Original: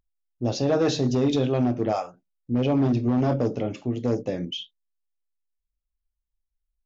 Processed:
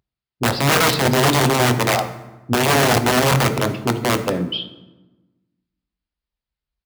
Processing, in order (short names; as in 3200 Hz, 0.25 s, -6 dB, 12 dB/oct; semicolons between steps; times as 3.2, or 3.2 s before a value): downsampling 11025 Hz; wrapped overs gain 18 dB; HPF 73 Hz; reverb RT60 1.1 s, pre-delay 4 ms, DRR 8.5 dB; gain +7 dB